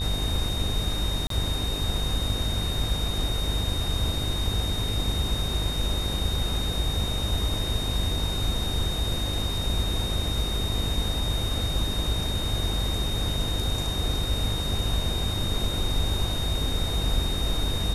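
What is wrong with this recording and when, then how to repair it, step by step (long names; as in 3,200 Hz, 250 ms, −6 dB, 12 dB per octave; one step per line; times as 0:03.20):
mains buzz 50 Hz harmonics 21 −31 dBFS
whistle 3,700 Hz −31 dBFS
0:01.27–0:01.30: drop-out 33 ms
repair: hum removal 50 Hz, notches 21
notch filter 3,700 Hz, Q 30
repair the gap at 0:01.27, 33 ms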